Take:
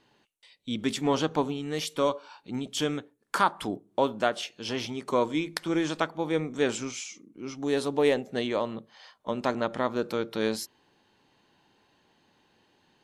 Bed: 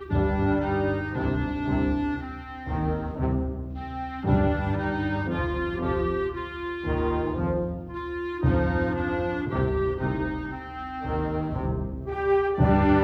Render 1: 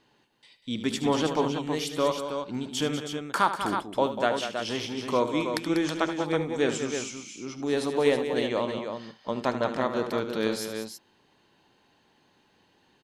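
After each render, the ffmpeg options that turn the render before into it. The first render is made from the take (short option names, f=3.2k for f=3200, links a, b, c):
-af "aecho=1:1:76|193|322:0.266|0.335|0.447"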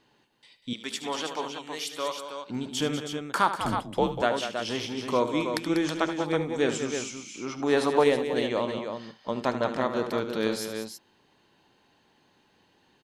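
-filter_complex "[0:a]asettb=1/sr,asplit=3[a][b][c];[a]atrim=end=0.734[d];[b]atrim=start=0.73:end=2.5,asetpts=PTS-STARTPTS,afade=t=in:d=0.004:c=qsin,afade=t=out:st=1.766:d=0.004:c=qsin,highpass=f=1.1k:p=1[e];[c]atrim=start=2.496[f];[d][e]acrossfade=d=0.004:c1=hsin:c2=qsin[g];[g][f]acrossfade=d=0.004:c1=qsin:c2=hsin,asettb=1/sr,asplit=3[h][i][j];[h]atrim=end=3.604[k];[i]atrim=start=3.6:end=4.22,asetpts=PTS-STARTPTS,afade=t=in:d=0.004:c=qsin,afade=t=out:st=0.616:d=0.004:c=qsin,afreqshift=-85[l];[j]atrim=start=4.216[m];[k][l]acrossfade=d=0.004:c1=hsin:c2=qsin[n];[n][m]acrossfade=d=0.004:c1=qsin:c2=hsin,asettb=1/sr,asplit=3[o][p][q];[o]atrim=end=7.344[r];[p]atrim=start=7.34:end=8.04,asetpts=PTS-STARTPTS,afade=t=in:d=0.004:c=qsin,afade=t=out:st=0.696:d=0.004:c=qsin,equalizer=f=1.1k:w=0.56:g=9[s];[q]atrim=start=8.036[t];[r][s]acrossfade=d=0.004:c1=hsin:c2=qsin[u];[u][t]acrossfade=d=0.004:c1=qsin:c2=hsin"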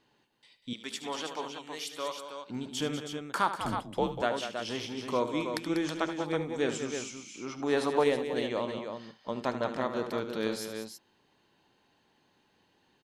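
-af "volume=-4.5dB"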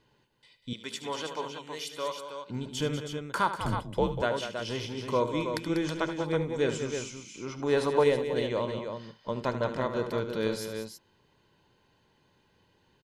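-af "bass=f=250:g=8,treble=f=4k:g=-1,aecho=1:1:2:0.39"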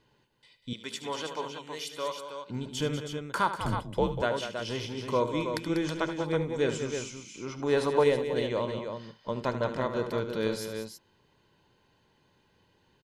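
-af anull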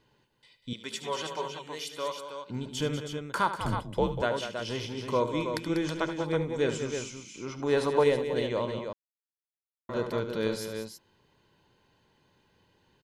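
-filter_complex "[0:a]asettb=1/sr,asplit=3[a][b][c];[a]atrim=end=0.924[d];[b]atrim=start=0.92:end=1.67,asetpts=PTS-STARTPTS,afade=t=in:d=0.004:c=qsin,afade=t=out:st=0.746:d=0.004:c=qsin,aecho=1:1:5.3:0.65,atrim=end_sample=33075[e];[c]atrim=start=1.666[f];[d][e]acrossfade=d=0.004:c1=hsin:c2=qsin[g];[g][f]acrossfade=d=0.004:c1=qsin:c2=hsin,asplit=3[h][i][j];[h]atrim=end=8.93,asetpts=PTS-STARTPTS,afade=t=out:st=8.926:d=0.004:c=hsin[k];[i]atrim=start=8.93:end=9.89,asetpts=PTS-STARTPTS,volume=0[l];[j]atrim=start=9.89,asetpts=PTS-STARTPTS,afade=t=in:d=0.004:c=hsin[m];[k][l][m]concat=n=3:v=0:a=1"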